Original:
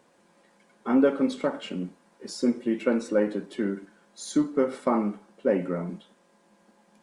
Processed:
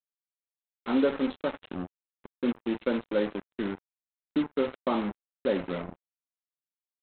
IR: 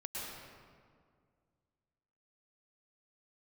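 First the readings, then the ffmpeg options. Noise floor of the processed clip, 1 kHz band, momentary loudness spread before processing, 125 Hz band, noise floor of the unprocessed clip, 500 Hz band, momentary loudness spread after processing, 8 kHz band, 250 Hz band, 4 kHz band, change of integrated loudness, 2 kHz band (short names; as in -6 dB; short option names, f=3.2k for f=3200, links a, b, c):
under -85 dBFS, -2.5 dB, 16 LU, -5.0 dB, -63 dBFS, -3.5 dB, 12 LU, under -35 dB, -4.5 dB, -1.0 dB, -4.0 dB, -1.0 dB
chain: -af "lowshelf=f=66:g=-10.5,aresample=8000,acrusher=bits=4:mix=0:aa=0.5,aresample=44100,volume=-3.5dB"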